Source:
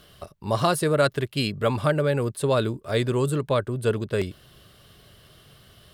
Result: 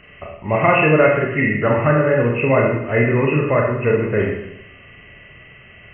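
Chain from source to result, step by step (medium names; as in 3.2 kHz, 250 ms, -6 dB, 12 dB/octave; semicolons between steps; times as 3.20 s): knee-point frequency compression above 1.7 kHz 4:1; Schroeder reverb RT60 0.83 s, combs from 26 ms, DRR -1 dB; trim +4 dB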